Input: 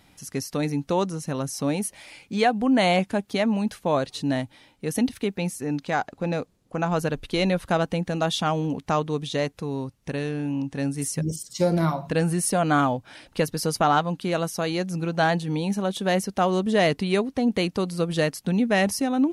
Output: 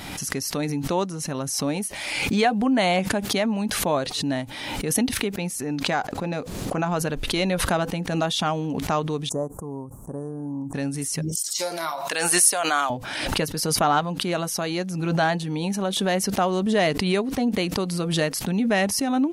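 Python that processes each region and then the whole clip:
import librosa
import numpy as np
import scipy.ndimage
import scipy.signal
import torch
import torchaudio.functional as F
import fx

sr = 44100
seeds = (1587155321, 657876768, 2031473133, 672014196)

y = fx.chain(x, sr, fx.ellip_bandstop(low_hz=1100.0, high_hz=7800.0, order=3, stop_db=60),
    fx.upward_expand(threshold_db=-45.0, expansion=1.5), at=(9.29, 10.74))
y = fx.chain(y, sr, fx.highpass(hz=680.0, slope=12),
    fx.high_shelf(hz=3600.0, db=10.0), at=(11.35, 12.9))
y = fx.low_shelf(y, sr, hz=200.0, db=-3.5)
y = fx.notch(y, sr, hz=500.0, q=15.0)
y = fx.pre_swell(y, sr, db_per_s=34.0)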